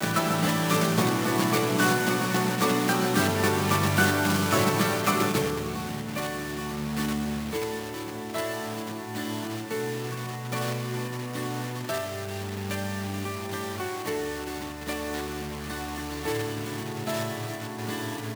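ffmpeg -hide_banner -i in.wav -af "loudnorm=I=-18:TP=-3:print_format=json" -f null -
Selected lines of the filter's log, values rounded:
"input_i" : "-28.2",
"input_tp" : "-8.5",
"input_lra" : "8.4",
"input_thresh" : "-38.2",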